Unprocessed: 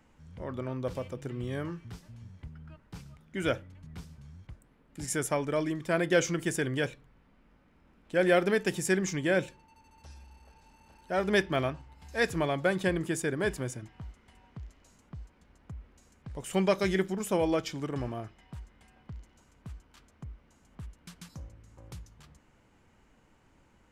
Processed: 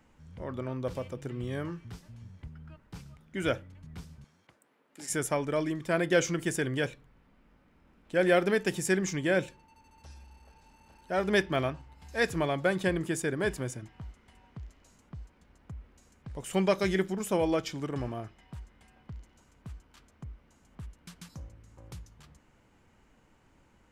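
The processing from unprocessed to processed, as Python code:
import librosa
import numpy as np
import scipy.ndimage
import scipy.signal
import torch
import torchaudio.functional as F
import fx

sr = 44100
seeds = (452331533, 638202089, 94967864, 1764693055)

y = fx.highpass(x, sr, hz=380.0, slope=12, at=(4.24, 5.1))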